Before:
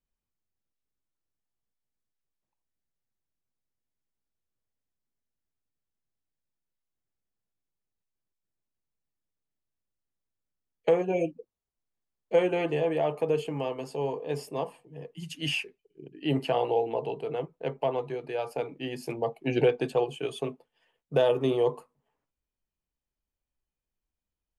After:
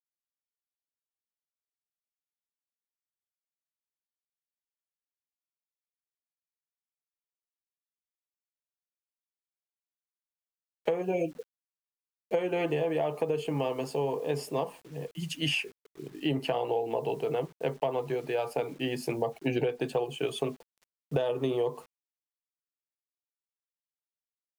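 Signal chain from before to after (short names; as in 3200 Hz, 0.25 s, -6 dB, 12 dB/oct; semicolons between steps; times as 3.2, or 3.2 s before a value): requantised 10-bit, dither none; compressor 10:1, threshold -29 dBFS, peak gain reduction 12 dB; gain +4 dB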